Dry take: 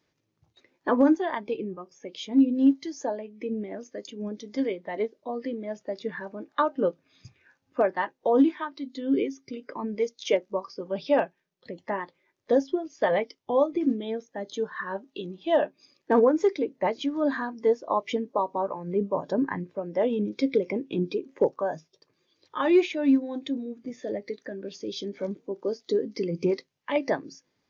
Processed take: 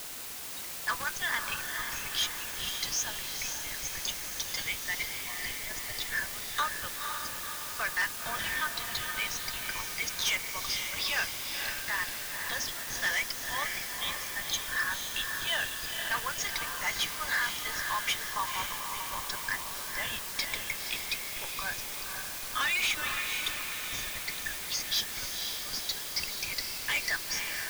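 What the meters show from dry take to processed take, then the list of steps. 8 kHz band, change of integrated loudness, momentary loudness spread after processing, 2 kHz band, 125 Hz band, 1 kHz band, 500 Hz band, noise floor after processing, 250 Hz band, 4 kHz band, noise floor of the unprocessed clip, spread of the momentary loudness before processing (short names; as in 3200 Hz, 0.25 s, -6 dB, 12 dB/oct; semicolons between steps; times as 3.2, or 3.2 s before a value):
n/a, -4.0 dB, 5 LU, +7.5 dB, -8.0 dB, -5.5 dB, -22.5 dB, -39 dBFS, -25.5 dB, +11.5 dB, -76 dBFS, 14 LU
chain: HPF 1500 Hz 24 dB/oct; high shelf 5000 Hz +11 dB; notch 1900 Hz, Q 22; in parallel at -9.5 dB: Schmitt trigger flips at -43.5 dBFS; on the sum: requantised 8-bit, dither triangular; hard clip -32.5 dBFS, distortion -11 dB; on a send: diffused feedback echo 0.506 s, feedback 55%, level -5 dB; on the sum: gain +7 dB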